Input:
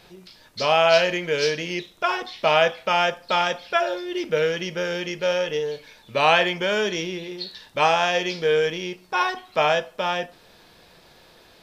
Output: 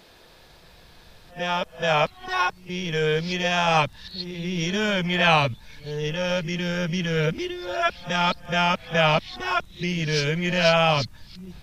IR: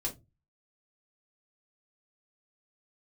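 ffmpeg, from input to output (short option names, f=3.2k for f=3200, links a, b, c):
-af "areverse,asubboost=boost=10.5:cutoff=130"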